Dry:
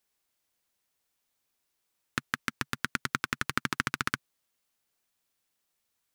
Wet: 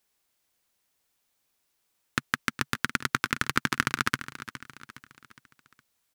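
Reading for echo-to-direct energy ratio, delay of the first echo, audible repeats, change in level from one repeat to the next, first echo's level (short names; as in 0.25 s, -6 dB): -13.0 dB, 0.413 s, 4, -7.0 dB, -14.0 dB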